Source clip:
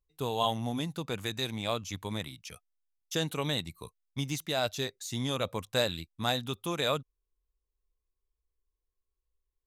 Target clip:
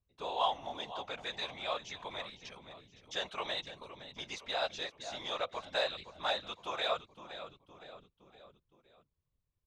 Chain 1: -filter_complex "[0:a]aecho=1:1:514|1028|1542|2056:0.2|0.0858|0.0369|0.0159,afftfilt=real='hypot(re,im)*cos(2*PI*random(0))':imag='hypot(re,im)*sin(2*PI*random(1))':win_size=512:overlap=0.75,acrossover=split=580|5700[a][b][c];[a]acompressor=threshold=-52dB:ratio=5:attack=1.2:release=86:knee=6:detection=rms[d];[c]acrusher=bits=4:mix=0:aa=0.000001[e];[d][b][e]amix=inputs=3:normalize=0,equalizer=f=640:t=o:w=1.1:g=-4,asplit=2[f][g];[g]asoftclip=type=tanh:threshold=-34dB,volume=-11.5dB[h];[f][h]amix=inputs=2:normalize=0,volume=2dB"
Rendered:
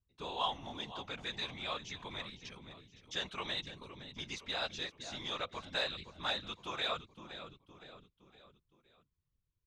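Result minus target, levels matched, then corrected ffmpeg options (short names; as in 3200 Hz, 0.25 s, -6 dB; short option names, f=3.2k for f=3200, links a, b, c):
compressor: peak gain reduction -6.5 dB; 500 Hz band -4.0 dB
-filter_complex "[0:a]aecho=1:1:514|1028|1542|2056:0.2|0.0858|0.0369|0.0159,afftfilt=real='hypot(re,im)*cos(2*PI*random(0))':imag='hypot(re,im)*sin(2*PI*random(1))':win_size=512:overlap=0.75,acrossover=split=580|5700[a][b][c];[a]acompressor=threshold=-60dB:ratio=5:attack=1.2:release=86:knee=6:detection=rms[d];[c]acrusher=bits=4:mix=0:aa=0.000001[e];[d][b][e]amix=inputs=3:normalize=0,equalizer=f=640:t=o:w=1.1:g=4.5,asplit=2[f][g];[g]asoftclip=type=tanh:threshold=-34dB,volume=-11.5dB[h];[f][h]amix=inputs=2:normalize=0,volume=2dB"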